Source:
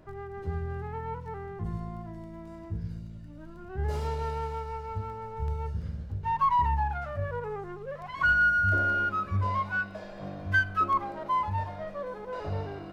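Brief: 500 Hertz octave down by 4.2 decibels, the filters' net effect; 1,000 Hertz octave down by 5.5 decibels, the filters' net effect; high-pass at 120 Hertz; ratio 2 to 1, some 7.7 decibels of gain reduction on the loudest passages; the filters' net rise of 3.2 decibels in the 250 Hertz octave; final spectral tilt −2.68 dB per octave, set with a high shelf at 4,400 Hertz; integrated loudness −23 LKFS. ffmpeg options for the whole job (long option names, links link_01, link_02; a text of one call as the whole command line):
ffmpeg -i in.wav -af "highpass=120,equalizer=frequency=250:width_type=o:gain=8,equalizer=frequency=500:width_type=o:gain=-6.5,equalizer=frequency=1000:width_type=o:gain=-5.5,highshelf=frequency=4400:gain=-6,acompressor=threshold=-38dB:ratio=2,volume=16.5dB" out.wav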